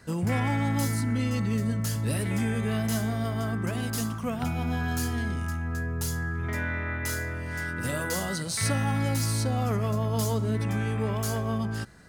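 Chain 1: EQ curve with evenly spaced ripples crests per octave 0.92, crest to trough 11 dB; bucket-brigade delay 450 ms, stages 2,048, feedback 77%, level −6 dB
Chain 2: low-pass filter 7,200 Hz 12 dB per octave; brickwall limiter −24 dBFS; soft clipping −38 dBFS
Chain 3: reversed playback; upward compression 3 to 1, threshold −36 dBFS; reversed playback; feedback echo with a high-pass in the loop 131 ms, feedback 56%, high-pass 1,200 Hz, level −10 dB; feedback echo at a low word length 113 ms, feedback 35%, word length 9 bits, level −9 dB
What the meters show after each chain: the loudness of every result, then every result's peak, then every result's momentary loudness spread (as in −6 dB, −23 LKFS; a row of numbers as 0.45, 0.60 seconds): −25.0, −40.5, −29.0 LKFS; −11.5, −38.0, −14.5 dBFS; 7, 1, 4 LU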